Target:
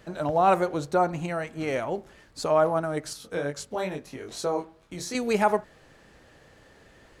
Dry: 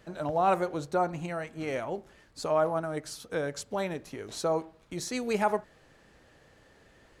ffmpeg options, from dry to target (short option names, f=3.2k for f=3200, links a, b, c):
-filter_complex "[0:a]asettb=1/sr,asplit=3[a][b][c];[a]atrim=end=3.134[d];[b]atrim=start=3.13:end=5.15,asetpts=PTS-STARTPTS,afade=t=in:d=0.004:c=qsin,afade=t=out:st=2.016:d=0.004:c=qsin,flanger=delay=20:depth=2.9:speed=2.3[e];[c]atrim=start=5.146[f];[d][e]acrossfade=d=0.004:c1=hsin:c2=qsin[g];[g][f]acrossfade=d=0.004:c1=qsin:c2=hsin,volume=4.5dB"